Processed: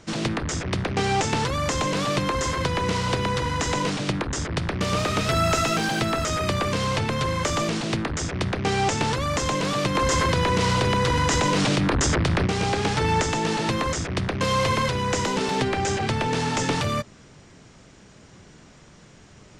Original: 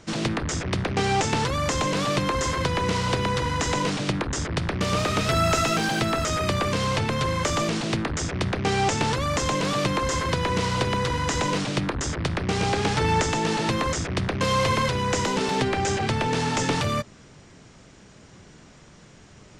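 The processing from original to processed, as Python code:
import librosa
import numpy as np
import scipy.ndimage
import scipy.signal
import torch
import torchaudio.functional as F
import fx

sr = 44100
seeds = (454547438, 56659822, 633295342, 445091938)

y = fx.env_flatten(x, sr, amount_pct=100, at=(9.95, 12.47))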